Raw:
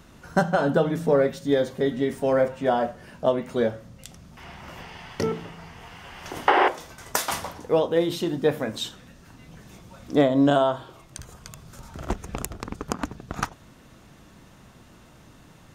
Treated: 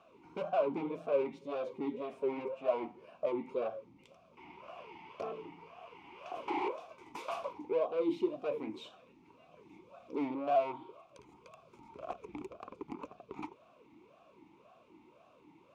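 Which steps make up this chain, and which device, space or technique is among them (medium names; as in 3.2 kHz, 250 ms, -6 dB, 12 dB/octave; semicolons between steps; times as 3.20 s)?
talk box (valve stage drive 25 dB, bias 0.4; talking filter a-u 1.9 Hz); trim +4.5 dB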